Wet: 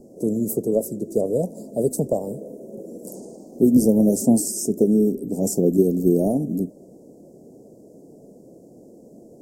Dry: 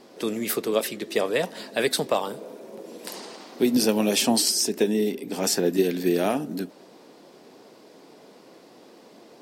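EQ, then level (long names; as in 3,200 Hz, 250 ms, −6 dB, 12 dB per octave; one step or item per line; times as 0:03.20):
elliptic band-stop filter 620–7,000 Hz, stop band 50 dB
low-shelf EQ 120 Hz +11.5 dB
low-shelf EQ 310 Hz +8.5 dB
0.0 dB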